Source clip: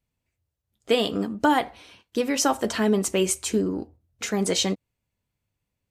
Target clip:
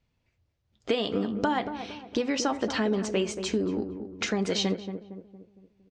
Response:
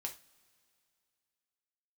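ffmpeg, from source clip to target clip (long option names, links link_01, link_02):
-filter_complex "[0:a]acompressor=threshold=-34dB:ratio=3,lowpass=frequency=5700:width=0.5412,lowpass=frequency=5700:width=1.3066,asplit=2[link_01][link_02];[link_02]adelay=230,lowpass=frequency=930:poles=1,volume=-8dB,asplit=2[link_03][link_04];[link_04]adelay=230,lowpass=frequency=930:poles=1,volume=0.49,asplit=2[link_05][link_06];[link_06]adelay=230,lowpass=frequency=930:poles=1,volume=0.49,asplit=2[link_07][link_08];[link_08]adelay=230,lowpass=frequency=930:poles=1,volume=0.49,asplit=2[link_09][link_10];[link_10]adelay=230,lowpass=frequency=930:poles=1,volume=0.49,asplit=2[link_11][link_12];[link_12]adelay=230,lowpass=frequency=930:poles=1,volume=0.49[link_13];[link_01][link_03][link_05][link_07][link_09][link_11][link_13]amix=inputs=7:normalize=0,volume=6.5dB"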